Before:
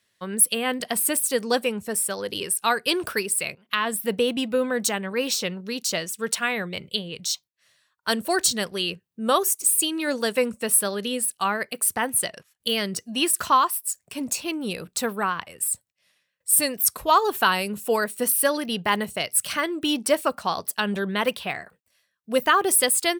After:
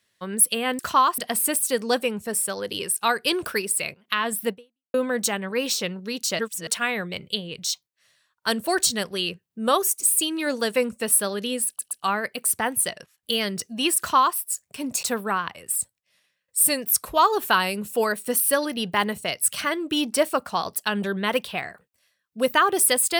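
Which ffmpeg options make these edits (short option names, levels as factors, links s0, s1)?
-filter_complex "[0:a]asplit=9[s0][s1][s2][s3][s4][s5][s6][s7][s8];[s0]atrim=end=0.792[s9];[s1]atrim=start=13.348:end=13.742[s10];[s2]atrim=start=0.788:end=4.55,asetpts=PTS-STARTPTS,afade=t=out:st=3.312:d=0.45:c=exp[s11];[s3]atrim=start=4.55:end=6.002,asetpts=PTS-STARTPTS,afade=t=in:d=0.004:c=hsin[s12];[s4]atrim=start=5.998:end=6.282,asetpts=PTS-STARTPTS,areverse[s13];[s5]atrim=start=6.278:end=11.402[s14];[s6]atrim=start=11.278:end=11.402[s15];[s7]atrim=start=11.278:end=14.402[s16];[s8]atrim=start=14.948[s17];[s9][s10]acrossfade=d=0.004:c1=hsin:c2=hsin[s18];[s11][s12]concat=n=2:v=0:a=1[s19];[s18][s19]acrossfade=d=0.004:c1=hsin:c2=hsin[s20];[s20][s13]acrossfade=d=0.004:c1=hsin:c2=hsin[s21];[s21][s14]acrossfade=d=0.004:c1=hsin:c2=hsin[s22];[s22][s15]acrossfade=d=0.004:c1=hsin:c2=hsin[s23];[s23][s16]acrossfade=d=0.004:c1=hsin:c2=hsin[s24];[s24][s17]acrossfade=d=0.004:c1=hsin:c2=hsin"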